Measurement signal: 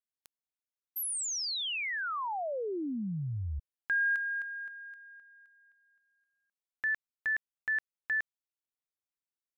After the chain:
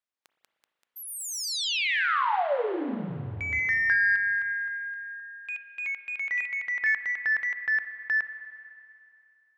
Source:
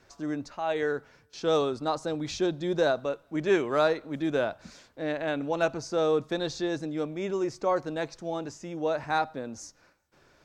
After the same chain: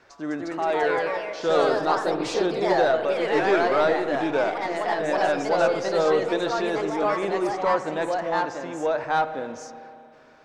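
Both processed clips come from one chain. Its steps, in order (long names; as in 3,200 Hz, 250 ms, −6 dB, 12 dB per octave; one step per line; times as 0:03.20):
mid-hump overdrive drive 14 dB, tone 1,900 Hz, clips at −11.5 dBFS
delay with pitch and tempo change per echo 217 ms, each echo +2 semitones, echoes 3
spring reverb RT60 2.7 s, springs 30/38/57 ms, chirp 35 ms, DRR 10 dB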